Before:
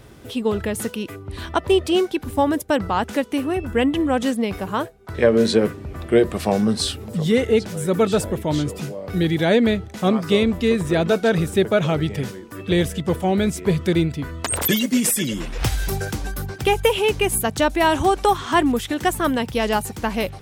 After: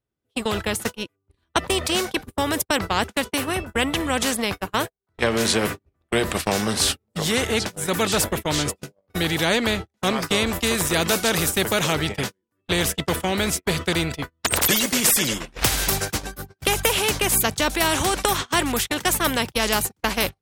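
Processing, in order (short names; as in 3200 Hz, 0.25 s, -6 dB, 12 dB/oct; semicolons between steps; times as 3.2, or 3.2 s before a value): 10.46–11.93 high shelf 6900 Hz +10 dB; gate -24 dBFS, range -54 dB; spectral compressor 2:1; gain +1.5 dB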